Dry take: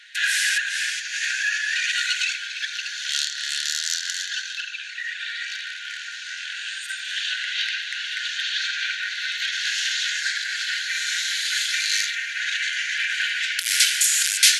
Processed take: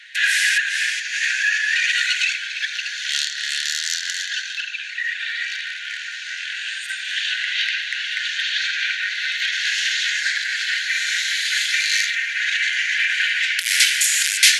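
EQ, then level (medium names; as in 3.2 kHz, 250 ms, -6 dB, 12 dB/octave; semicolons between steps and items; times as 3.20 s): resonant high-pass 1.9 kHz, resonance Q 2.1; 0.0 dB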